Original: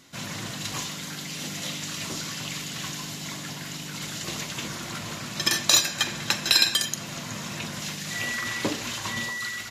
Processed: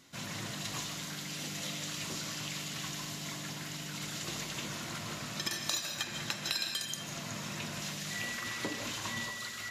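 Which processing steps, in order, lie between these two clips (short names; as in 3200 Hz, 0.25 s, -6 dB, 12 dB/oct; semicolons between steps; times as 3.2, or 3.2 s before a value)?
compressor 3:1, threshold -28 dBFS, peak gain reduction 11 dB; reverb RT60 0.45 s, pre-delay 0.11 s, DRR 6 dB; gain -6 dB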